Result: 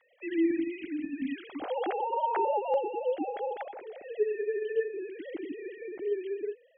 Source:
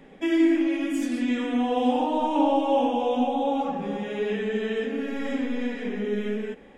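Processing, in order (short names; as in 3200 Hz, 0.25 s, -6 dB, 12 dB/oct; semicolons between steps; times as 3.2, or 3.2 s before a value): sine-wave speech; bell 420 Hz -13.5 dB 0.89 oct, from 1.61 s 87 Hz, from 2.74 s 1100 Hz; gain -3 dB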